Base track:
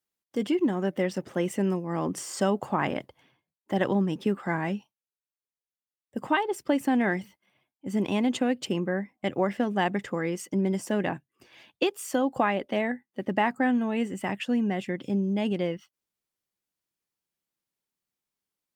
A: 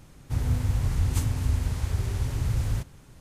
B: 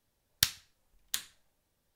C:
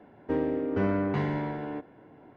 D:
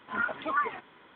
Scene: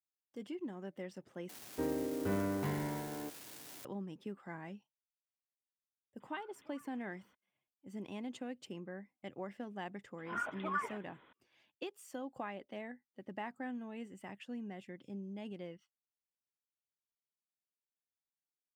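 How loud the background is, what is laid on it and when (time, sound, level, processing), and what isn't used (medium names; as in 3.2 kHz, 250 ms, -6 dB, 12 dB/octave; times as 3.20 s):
base track -18 dB
1.49 s: replace with C -8 dB + zero-crossing glitches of -28 dBFS
6.20 s: add D -16.5 dB + compression 3:1, threshold -49 dBFS
10.18 s: add D -8.5 dB
not used: A, B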